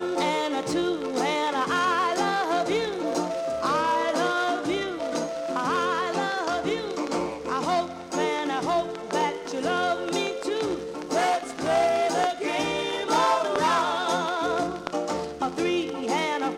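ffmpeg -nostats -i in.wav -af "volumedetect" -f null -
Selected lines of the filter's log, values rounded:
mean_volume: -25.9 dB
max_volume: -7.1 dB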